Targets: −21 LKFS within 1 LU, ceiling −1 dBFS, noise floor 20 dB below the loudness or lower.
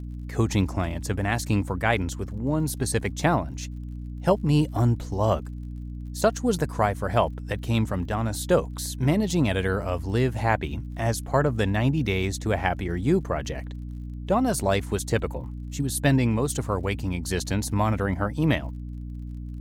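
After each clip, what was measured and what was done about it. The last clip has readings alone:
crackle rate 41 per second; mains hum 60 Hz; hum harmonics up to 300 Hz; level of the hum −32 dBFS; integrated loudness −25.5 LKFS; sample peak −6.5 dBFS; target loudness −21.0 LKFS
→ click removal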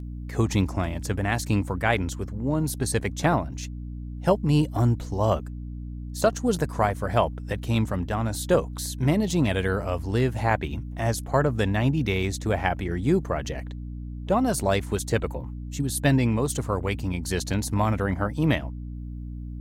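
crackle rate 0.10 per second; mains hum 60 Hz; hum harmonics up to 300 Hz; level of the hum −32 dBFS
→ hum removal 60 Hz, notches 5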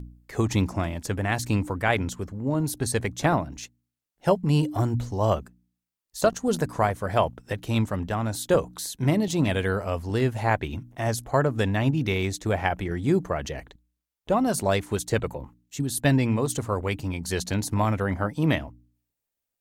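mains hum none found; integrated loudness −26.0 LKFS; sample peak −7.0 dBFS; target loudness −21.0 LKFS
→ level +5 dB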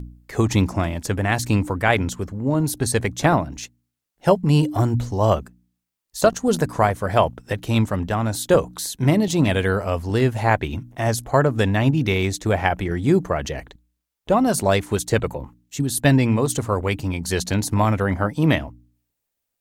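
integrated loudness −21.0 LKFS; sample peak −2.0 dBFS; background noise floor −80 dBFS

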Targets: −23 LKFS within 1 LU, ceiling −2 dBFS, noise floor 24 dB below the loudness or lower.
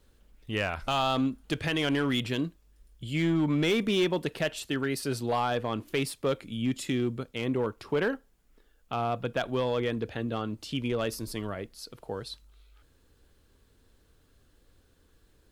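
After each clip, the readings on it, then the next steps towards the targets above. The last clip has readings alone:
share of clipped samples 0.7%; peaks flattened at −20.5 dBFS; integrated loudness −30.0 LKFS; sample peak −20.5 dBFS; target loudness −23.0 LKFS
→ clipped peaks rebuilt −20.5 dBFS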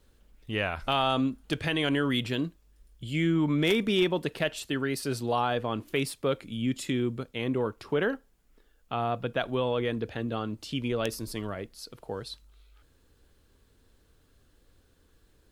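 share of clipped samples 0.0%; integrated loudness −29.5 LKFS; sample peak −11.5 dBFS; target loudness −23.0 LKFS
→ level +6.5 dB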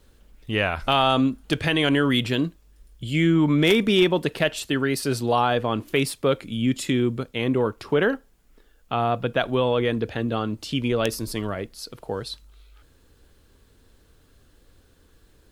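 integrated loudness −23.0 LKFS; sample peak −5.0 dBFS; background noise floor −58 dBFS

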